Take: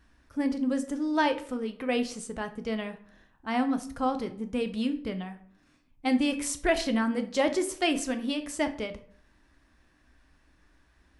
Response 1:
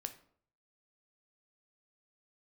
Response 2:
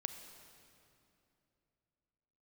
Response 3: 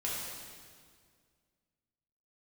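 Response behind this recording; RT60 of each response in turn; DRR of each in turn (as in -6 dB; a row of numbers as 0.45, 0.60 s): 1; 0.60, 2.8, 1.9 s; 7.5, 7.5, -6.5 dB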